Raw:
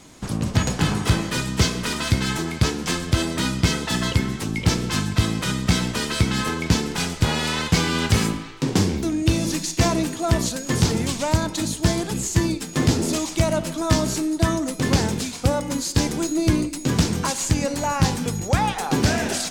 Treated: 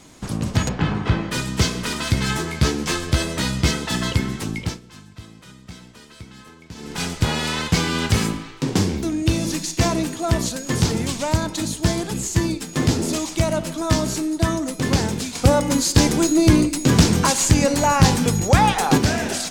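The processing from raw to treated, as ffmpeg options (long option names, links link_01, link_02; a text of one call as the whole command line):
ffmpeg -i in.wav -filter_complex "[0:a]asplit=3[link_01][link_02][link_03];[link_01]afade=type=out:start_time=0.68:duration=0.02[link_04];[link_02]lowpass=2700,afade=type=in:start_time=0.68:duration=0.02,afade=type=out:start_time=1.3:duration=0.02[link_05];[link_03]afade=type=in:start_time=1.3:duration=0.02[link_06];[link_04][link_05][link_06]amix=inputs=3:normalize=0,asettb=1/sr,asplit=3[link_07][link_08][link_09];[link_07]atrim=end=2.154[link_10];[link_08]atrim=start=2.15:end=3.71,asetpts=PTS-STARTPTS,afade=type=in:duration=0.004:curve=qsin,afade=type=out:start_time=1.556:duration=0.004:curve=qsin,asplit=2[link_11][link_12];[link_12]adelay=14,volume=-4.5dB[link_13];[link_11][link_13]amix=inputs=2:normalize=0,atrim=end_sample=68796[link_14];[link_09]atrim=start=3.706[link_15];[link_10][link_14]acrossfade=duration=0.004:curve1=hsin:curve2=qsin[link_16];[link_16][link_15]acrossfade=duration=0.004:curve1=qsin:curve2=hsin,asettb=1/sr,asplit=3[link_17][link_18][link_19];[link_17]atrim=end=15.354[link_20];[link_18]atrim=start=15.35:end=18.98,asetpts=PTS-STARTPTS,afade=type=in:duration=0.004:curve=qsin,afade=type=out:start_time=3.626:duration=0.004:curve=qsin,acontrast=58[link_21];[link_19]atrim=start=18.976[link_22];[link_20][link_21]acrossfade=duration=0.004:curve1=hsin:curve2=qsin[link_23];[link_23][link_22]acrossfade=duration=0.004:curve1=qsin:curve2=hsin,asplit=3[link_24][link_25][link_26];[link_24]atrim=end=4.8,asetpts=PTS-STARTPTS,afade=type=out:start_time=4.49:duration=0.31:silence=0.1[link_27];[link_25]atrim=start=4.8:end=6.75,asetpts=PTS-STARTPTS,volume=-20dB[link_28];[link_26]atrim=start=6.75,asetpts=PTS-STARTPTS,afade=type=in:duration=0.31:silence=0.1[link_29];[link_27][link_28][link_29]concat=n=3:v=0:a=1" out.wav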